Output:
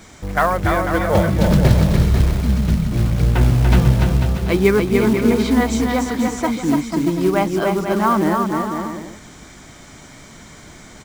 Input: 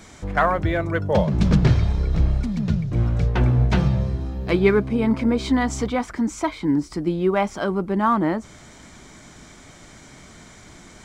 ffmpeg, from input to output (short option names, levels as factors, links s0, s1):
-af "acrusher=bits=5:mode=log:mix=0:aa=0.000001,aecho=1:1:290|493|635.1|734.6|804.2:0.631|0.398|0.251|0.158|0.1,volume=1.26"